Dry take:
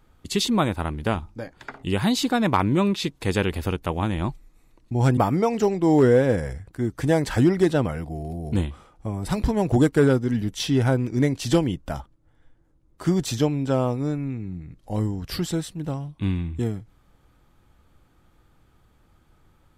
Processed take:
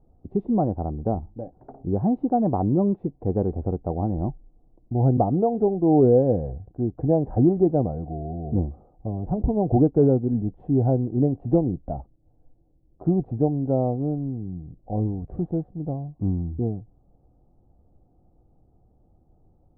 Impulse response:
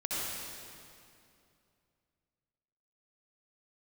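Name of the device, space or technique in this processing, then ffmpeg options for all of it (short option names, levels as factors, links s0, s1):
under water: -af "lowpass=f=640:w=0.5412,lowpass=f=640:w=1.3066,equalizer=f=740:t=o:w=0.25:g=11"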